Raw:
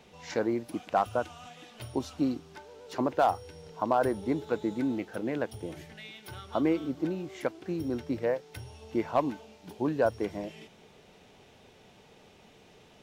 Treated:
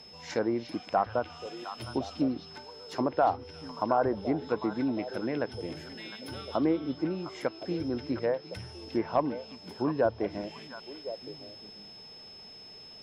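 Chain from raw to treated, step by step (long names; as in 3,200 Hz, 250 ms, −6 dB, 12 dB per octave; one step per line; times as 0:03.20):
steady tone 5,200 Hz −49 dBFS
treble cut that deepens with the level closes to 1,700 Hz, closed at −23 dBFS
echo through a band-pass that steps 354 ms, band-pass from 3,400 Hz, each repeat −1.4 octaves, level −5 dB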